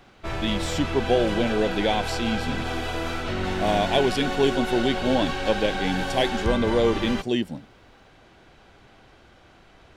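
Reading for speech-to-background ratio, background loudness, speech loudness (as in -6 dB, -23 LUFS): 4.0 dB, -29.0 LUFS, -25.0 LUFS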